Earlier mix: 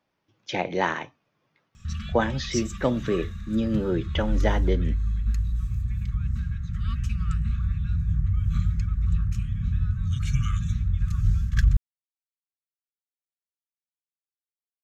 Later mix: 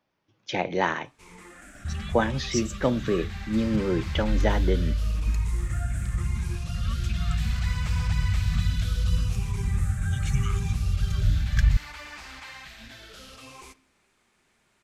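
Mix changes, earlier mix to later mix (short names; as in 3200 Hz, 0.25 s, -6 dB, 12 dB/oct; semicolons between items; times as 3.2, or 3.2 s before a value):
first sound: unmuted; reverb: on, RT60 0.70 s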